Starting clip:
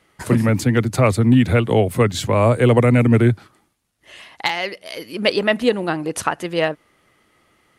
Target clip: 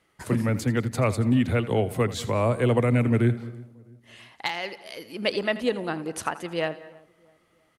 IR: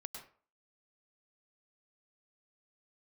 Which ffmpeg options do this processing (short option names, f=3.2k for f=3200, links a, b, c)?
-filter_complex "[0:a]asplit=2[a][b];[b]adelay=327,lowpass=f=1.2k:p=1,volume=-23dB,asplit=2[c][d];[d]adelay=327,lowpass=f=1.2k:p=1,volume=0.43,asplit=2[e][f];[f]adelay=327,lowpass=f=1.2k:p=1,volume=0.43[g];[a][c][e][g]amix=inputs=4:normalize=0,asplit=2[h][i];[1:a]atrim=start_sample=2205,adelay=82[j];[i][j]afir=irnorm=-1:irlink=0,volume=-11.5dB[k];[h][k]amix=inputs=2:normalize=0,volume=-8dB"